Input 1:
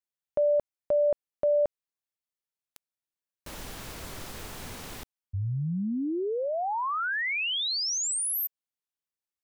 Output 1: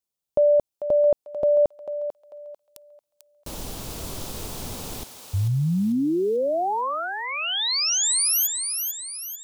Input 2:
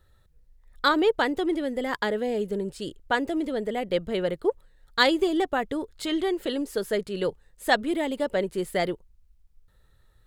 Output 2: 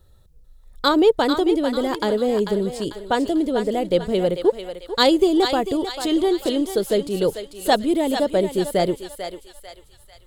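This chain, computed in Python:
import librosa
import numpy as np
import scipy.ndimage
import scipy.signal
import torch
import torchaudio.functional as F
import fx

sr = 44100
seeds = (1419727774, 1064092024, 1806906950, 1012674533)

y = fx.peak_eq(x, sr, hz=1800.0, db=-11.5, octaves=1.2)
y = fx.echo_thinned(y, sr, ms=444, feedback_pct=47, hz=840.0, wet_db=-6.0)
y = y * librosa.db_to_amplitude(7.5)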